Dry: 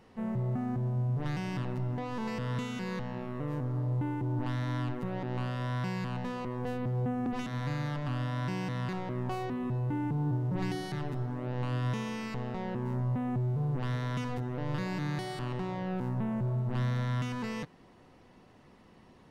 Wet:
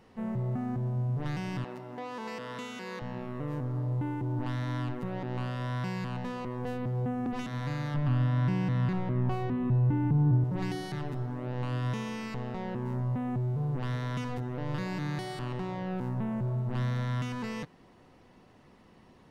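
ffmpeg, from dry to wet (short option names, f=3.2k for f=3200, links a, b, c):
-filter_complex "[0:a]asettb=1/sr,asplit=3[a][b][c];[a]atrim=end=1.644[d];[b]atrim=start=1.64:end=3.02,asetpts=PTS-STARTPTS,afade=t=in:d=0.004:c=qsin,afade=t=out:st=1.376:d=0.004:c=qsin,highpass=320[e];[c]atrim=start=3.016[f];[d][e]acrossfade=d=0.004:c1=hsin:c2=qsin[g];[g][f]acrossfade=d=0.004:c1=qsin:c2=hsin,asettb=1/sr,asplit=3[h][i][j];[h]atrim=end=7.944[k];[i]atrim=start=7.94:end=10.44,asetpts=PTS-STARTPTS,afade=t=in:d=0.004:c=qsin,afade=t=out:st=2.496:d=0.004:c=qsin,bass=f=250:g=8,treble=f=4k:g=-8[l];[j]atrim=start=10.436[m];[k][l]acrossfade=d=0.004:c1=hsin:c2=qsin[n];[n][m]acrossfade=d=0.004:c1=qsin:c2=hsin"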